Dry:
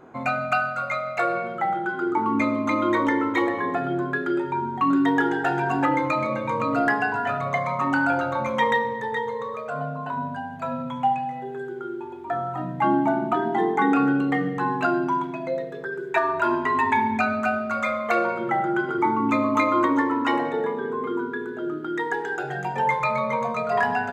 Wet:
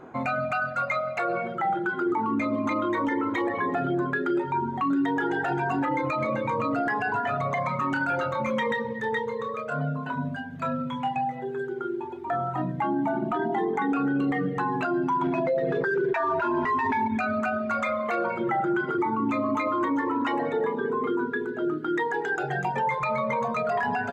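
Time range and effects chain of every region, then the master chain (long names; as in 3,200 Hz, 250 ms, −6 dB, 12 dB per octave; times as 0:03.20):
0:07.68–0:11.16: parametric band 750 Hz −10.5 dB 0.58 octaves + double-tracking delay 27 ms −8 dB
0:15.22–0:17.08: running median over 9 samples + low-pass filter 4,000 Hz + envelope flattener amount 70%
whole clip: reverb reduction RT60 0.54 s; high-shelf EQ 5,700 Hz −5.5 dB; brickwall limiter −21.5 dBFS; level +3 dB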